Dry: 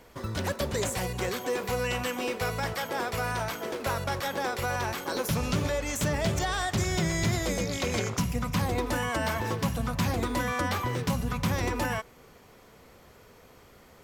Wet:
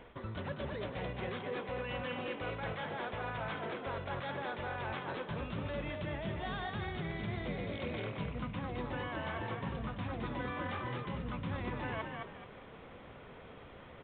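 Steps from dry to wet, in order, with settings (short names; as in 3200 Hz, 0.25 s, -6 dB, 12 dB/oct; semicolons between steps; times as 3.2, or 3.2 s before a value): reverse; compressor 6:1, threshold -39 dBFS, peak gain reduction 15.5 dB; reverse; frequency-shifting echo 0.214 s, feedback 31%, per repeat +41 Hz, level -4 dB; gain +1 dB; G.726 40 kbps 8000 Hz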